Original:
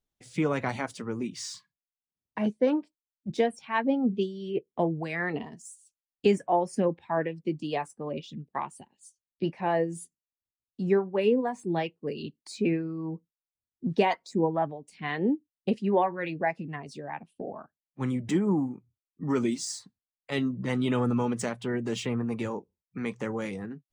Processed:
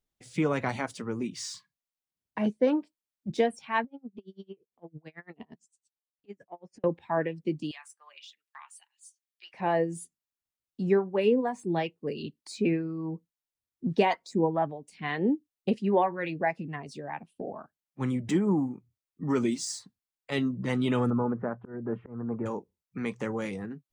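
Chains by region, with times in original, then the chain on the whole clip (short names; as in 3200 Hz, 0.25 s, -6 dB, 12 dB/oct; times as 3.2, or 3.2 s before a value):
3.84–6.84 compressor 8:1, threshold -35 dBFS + air absorption 120 m + dB-linear tremolo 8.9 Hz, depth 34 dB
7.71–9.54 HPF 1300 Hz 24 dB/oct + compressor 3:1, threshold -44 dBFS
21.1–22.46 Chebyshev low-pass 1500 Hz, order 4 + auto swell 0.254 s
whole clip: dry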